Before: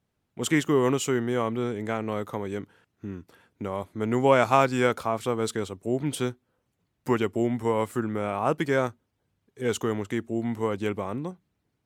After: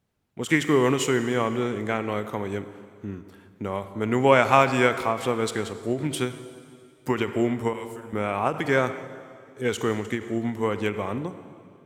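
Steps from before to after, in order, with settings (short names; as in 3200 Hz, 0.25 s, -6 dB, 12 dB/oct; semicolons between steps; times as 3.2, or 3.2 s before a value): 7.73–8.13 passive tone stack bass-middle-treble 5-5-5; reverb RT60 2.3 s, pre-delay 27 ms, DRR 10.5 dB; dynamic EQ 2200 Hz, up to +5 dB, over -43 dBFS, Q 1.1; ending taper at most 170 dB/s; gain +1.5 dB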